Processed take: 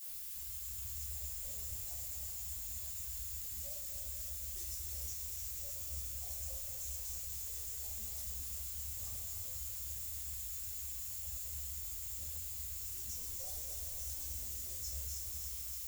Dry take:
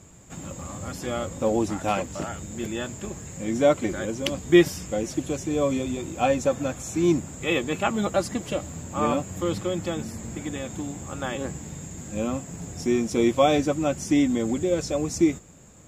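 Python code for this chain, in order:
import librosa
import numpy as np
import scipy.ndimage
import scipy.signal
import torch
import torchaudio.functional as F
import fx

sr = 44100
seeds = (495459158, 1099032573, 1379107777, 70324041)

p1 = (np.mod(10.0 ** (16.0 / 20.0) * x + 1.0, 2.0) - 1.0) / 10.0 ** (16.0 / 20.0)
p2 = x + (p1 * librosa.db_to_amplitude(-9.0))
p3 = scipy.signal.sosfilt(scipy.signal.cheby2(4, 50, [150.0, 3000.0], 'bandstop', fs=sr, output='sos'), p2)
p4 = fx.filter_lfo_bandpass(p3, sr, shape='sine', hz=8.1, low_hz=370.0, high_hz=1700.0, q=1.4)
p5 = fx.echo_thinned(p4, sr, ms=297, feedback_pct=75, hz=1100.0, wet_db=-5)
p6 = fx.dmg_noise_colour(p5, sr, seeds[0], colour='violet', level_db=-56.0)
p7 = fx.room_shoebox(p6, sr, seeds[1], volume_m3=610.0, walls='furnished', distance_m=7.0)
p8 = fx.echo_crushed(p7, sr, ms=242, feedback_pct=80, bits=11, wet_db=-8)
y = p8 * librosa.db_to_amplitude(3.5)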